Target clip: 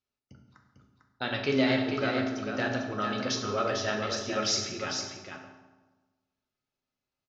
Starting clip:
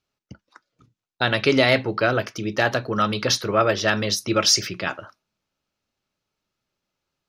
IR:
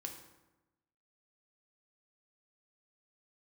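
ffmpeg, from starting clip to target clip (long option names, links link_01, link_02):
-filter_complex "[0:a]aecho=1:1:449:0.501[link_01];[1:a]atrim=start_sample=2205,asetrate=34398,aresample=44100[link_02];[link_01][link_02]afir=irnorm=-1:irlink=0,aresample=16000,aresample=44100,volume=-8.5dB"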